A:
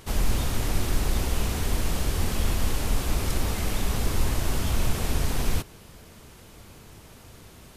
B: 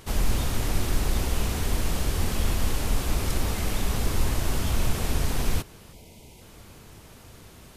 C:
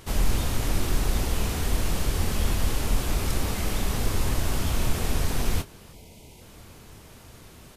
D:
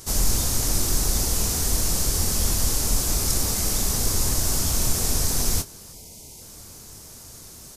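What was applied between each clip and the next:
spectral gain 5.93–6.41, 1000–2000 Hz -17 dB
doubler 25 ms -10.5 dB
resonant high shelf 4100 Hz +11 dB, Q 1.5

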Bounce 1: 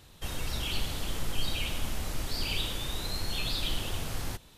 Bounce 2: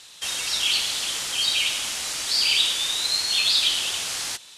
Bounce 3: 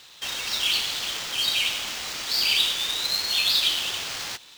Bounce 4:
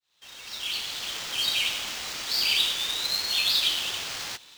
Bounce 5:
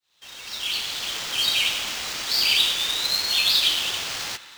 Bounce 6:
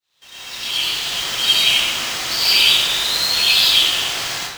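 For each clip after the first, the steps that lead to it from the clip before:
weighting filter ITU-R 468; gain +4.5 dB
median filter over 5 samples
opening faded in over 1.33 s; gain -2 dB
narrowing echo 0.107 s, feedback 83%, band-pass 1500 Hz, level -15.5 dB; gain +4 dB
plate-style reverb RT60 0.84 s, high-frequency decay 0.65×, pre-delay 80 ms, DRR -7.5 dB; gain -1 dB

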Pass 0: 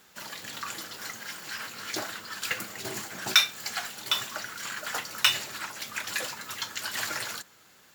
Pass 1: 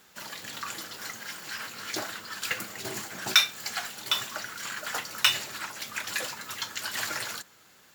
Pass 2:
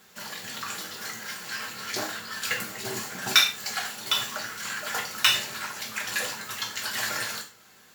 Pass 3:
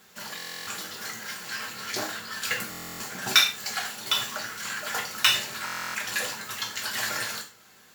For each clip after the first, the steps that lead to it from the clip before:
nothing audible
non-linear reverb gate 0.13 s falling, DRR 1 dB
stuck buffer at 0.37/2.7/5.65, samples 1024, times 12

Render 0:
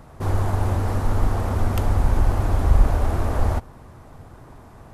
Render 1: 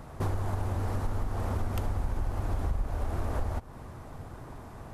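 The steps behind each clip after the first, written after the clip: compressor 6:1, threshold -27 dBFS, peak gain reduction 17 dB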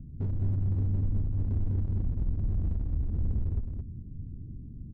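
inverse Chebyshev low-pass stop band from 840 Hz, stop band 60 dB; hard clip -30 dBFS, distortion -10 dB; echo 0.217 s -5 dB; gain +3.5 dB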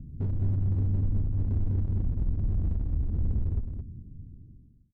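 ending faded out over 1.39 s; gain +1.5 dB

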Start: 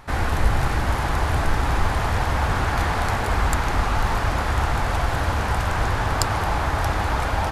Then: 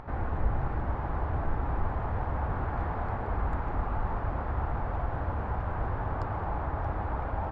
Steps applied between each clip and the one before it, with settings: LPF 1100 Hz 12 dB/oct; upward compressor, threshold -27 dBFS; gain -8.5 dB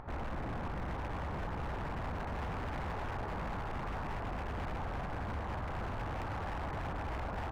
wavefolder -29.5 dBFS; gain -3.5 dB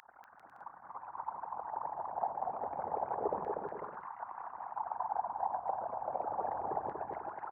formant sharpening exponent 3; LFO high-pass saw down 0.29 Hz 400–1700 Hz; on a send: bouncing-ball echo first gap 0.24 s, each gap 0.65×, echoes 5; on the sum: gain +6 dB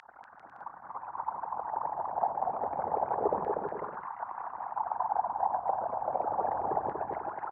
air absorption 99 m; gain +6 dB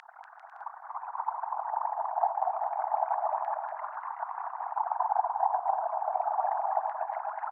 brick-wall FIR high-pass 610 Hz; gain +2.5 dB

